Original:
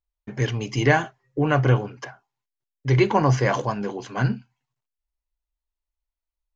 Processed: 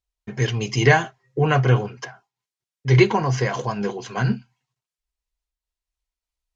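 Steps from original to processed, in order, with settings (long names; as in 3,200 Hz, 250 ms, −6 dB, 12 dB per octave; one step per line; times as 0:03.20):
high-shelf EQ 3,500 Hz +10 dB
0:03.14–0:04.28: downward compressor 3 to 1, threshold −20 dBFS, peak gain reduction 5.5 dB
high-frequency loss of the air 54 metres
notch comb filter 290 Hz
amplitude modulation by smooth noise, depth 60%
level +5 dB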